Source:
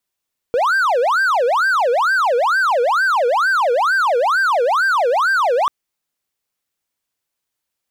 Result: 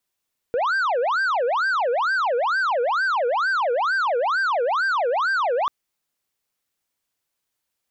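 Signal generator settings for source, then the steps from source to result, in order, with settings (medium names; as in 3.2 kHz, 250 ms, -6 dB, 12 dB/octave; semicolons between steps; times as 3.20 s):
siren wail 470–1580 Hz 2.2 per s triangle -11 dBFS 5.14 s
saturation -19.5 dBFS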